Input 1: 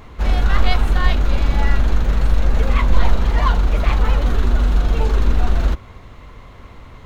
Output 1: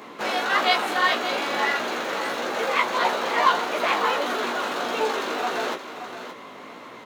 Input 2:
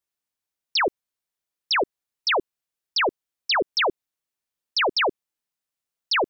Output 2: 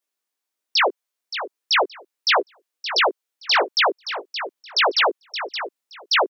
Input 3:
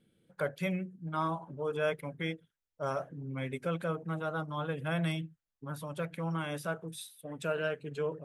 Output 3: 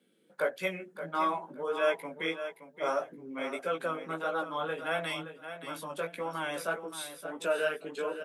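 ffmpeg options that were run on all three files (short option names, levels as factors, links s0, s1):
-filter_complex "[0:a]highpass=f=230:w=0.5412,highpass=f=230:w=1.3066,acrossover=split=370[s0][s1];[s0]acompressor=threshold=0.00316:ratio=4[s2];[s2][s1]amix=inputs=2:normalize=0,flanger=delay=16:depth=3.4:speed=1.6,aecho=1:1:572|1144|1716:0.299|0.0567|0.0108,volume=2.24"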